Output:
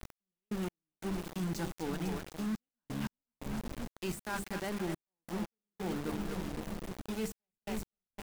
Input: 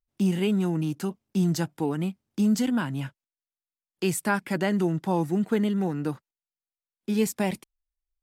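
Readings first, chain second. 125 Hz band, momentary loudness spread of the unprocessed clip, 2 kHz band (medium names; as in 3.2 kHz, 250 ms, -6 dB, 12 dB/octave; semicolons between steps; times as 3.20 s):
-12.0 dB, 8 LU, -9.5 dB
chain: peaking EQ 150 Hz -3.5 dB 0.53 oct; hum notches 50/100/150/200/250/300/350/400/450/500 Hz; two-band feedback delay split 350 Hz, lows 528 ms, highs 250 ms, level -10 dB; added noise brown -41 dBFS; reverse; compression 10:1, threshold -32 dBFS, peak gain reduction 13 dB; reverse; small samples zeroed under -38 dBFS; waveshaping leveller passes 1; trance gate "x..x..xxxxxxxx" 88 bpm -60 dB; de-esser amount 70%; trim -3 dB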